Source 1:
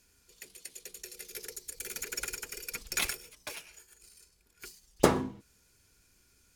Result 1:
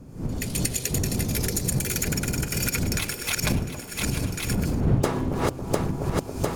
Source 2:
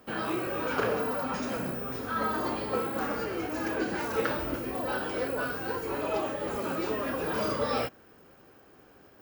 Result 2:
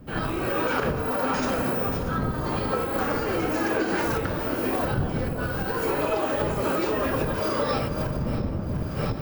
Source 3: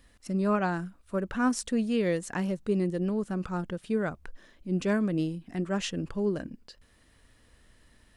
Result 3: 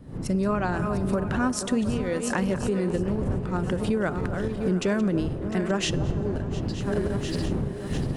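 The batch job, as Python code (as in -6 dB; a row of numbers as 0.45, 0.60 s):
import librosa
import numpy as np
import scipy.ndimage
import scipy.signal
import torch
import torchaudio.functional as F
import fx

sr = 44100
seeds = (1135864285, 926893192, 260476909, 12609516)

y = fx.reverse_delay_fb(x, sr, ms=351, feedback_pct=65, wet_db=-12)
y = fx.dmg_wind(y, sr, seeds[0], corner_hz=130.0, level_db=-27.0)
y = fx.recorder_agc(y, sr, target_db=-10.5, rise_db_per_s=55.0, max_gain_db=30)
y = fx.low_shelf(y, sr, hz=77.0, db=-10.5)
y = fx.comb_fb(y, sr, f0_hz=130.0, decay_s=1.8, harmonics='all', damping=0.0, mix_pct=40)
y = fx.echo_wet_bandpass(y, sr, ms=275, feedback_pct=64, hz=560.0, wet_db=-10.5)
y = y * 10.0 ** (-26 / 20.0) / np.sqrt(np.mean(np.square(y)))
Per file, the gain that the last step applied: +1.5, -1.0, -1.5 dB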